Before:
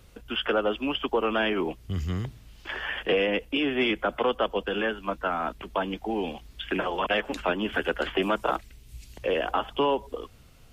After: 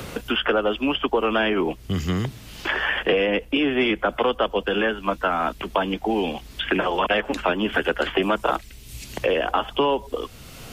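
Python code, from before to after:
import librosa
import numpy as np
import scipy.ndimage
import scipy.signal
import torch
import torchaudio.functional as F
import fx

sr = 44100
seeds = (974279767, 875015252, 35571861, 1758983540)

y = fx.band_squash(x, sr, depth_pct=70)
y = F.gain(torch.from_numpy(y), 4.5).numpy()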